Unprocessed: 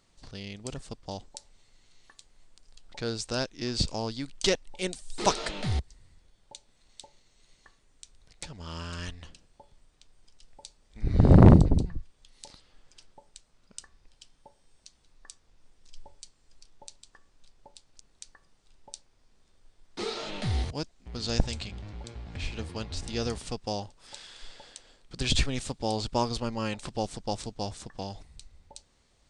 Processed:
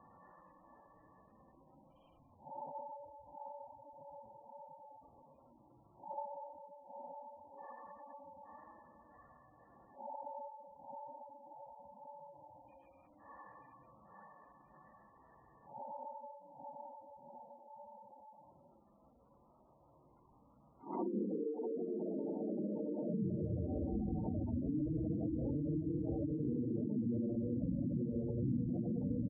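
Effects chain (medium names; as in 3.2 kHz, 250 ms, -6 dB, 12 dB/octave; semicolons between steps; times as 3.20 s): cabinet simulation 180–2700 Hz, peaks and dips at 410 Hz -10 dB, 940 Hz +3 dB, 1.6 kHz -10 dB; level-controlled noise filter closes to 1.1 kHz, open at -30.5 dBFS; bouncing-ball echo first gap 180 ms, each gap 0.75×, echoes 5; reverberation, pre-delay 33 ms, DRR 3.5 dB; dynamic bell 320 Hz, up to +7 dB, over -45 dBFS, Q 1.2; Paulstretch 4.7×, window 0.10 s, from 15.51 s; compression 10:1, threshold -38 dBFS, peak gain reduction 15.5 dB; low-pass that closes with the level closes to 400 Hz, closed at -38 dBFS; spectral gate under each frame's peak -15 dB strong; endings held to a fixed fall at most 120 dB/s; trim +7 dB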